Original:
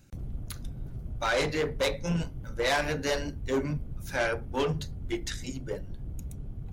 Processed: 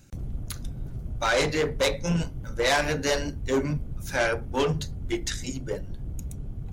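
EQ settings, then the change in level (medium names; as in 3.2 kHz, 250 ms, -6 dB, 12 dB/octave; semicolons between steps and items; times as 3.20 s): peaking EQ 6.9 kHz +3.5 dB 0.88 oct; +3.5 dB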